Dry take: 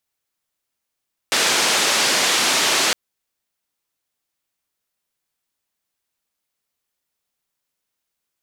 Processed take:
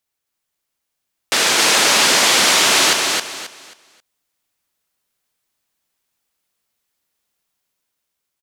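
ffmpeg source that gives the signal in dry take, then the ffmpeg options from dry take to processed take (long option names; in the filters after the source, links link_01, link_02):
-f lavfi -i "anoisesrc=color=white:duration=1.61:sample_rate=44100:seed=1,highpass=frequency=250,lowpass=frequency=6100,volume=-7.7dB"
-filter_complex "[0:a]dynaudnorm=framelen=320:gausssize=7:maxgain=3.5dB,asplit=2[link_01][link_02];[link_02]aecho=0:1:268|536|804|1072:0.668|0.18|0.0487|0.0132[link_03];[link_01][link_03]amix=inputs=2:normalize=0"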